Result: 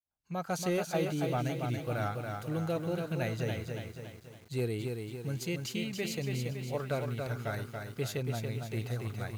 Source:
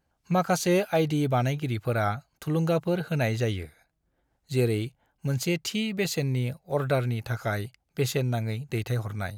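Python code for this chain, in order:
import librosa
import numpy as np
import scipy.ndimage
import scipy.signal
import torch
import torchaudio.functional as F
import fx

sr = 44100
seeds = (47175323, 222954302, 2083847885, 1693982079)

y = fx.fade_in_head(x, sr, length_s=0.58)
y = np.clip(y, -10.0 ** (-16.0 / 20.0), 10.0 ** (-16.0 / 20.0))
y = fx.echo_crushed(y, sr, ms=281, feedback_pct=55, bits=8, wet_db=-4.5)
y = F.gain(torch.from_numpy(y), -8.5).numpy()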